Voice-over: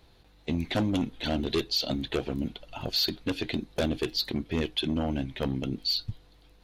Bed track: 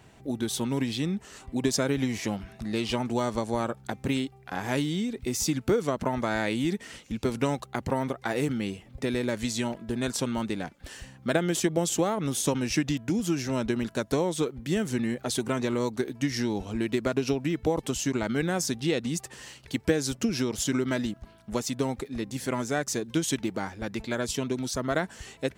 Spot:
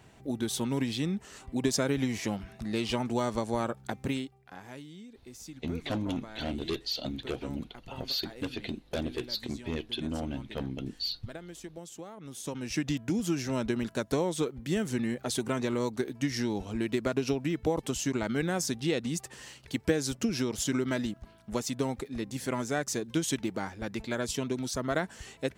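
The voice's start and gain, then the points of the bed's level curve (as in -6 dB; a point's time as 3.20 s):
5.15 s, -5.5 dB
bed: 4.01 s -2 dB
4.79 s -18.5 dB
12.12 s -18.5 dB
12.91 s -2.5 dB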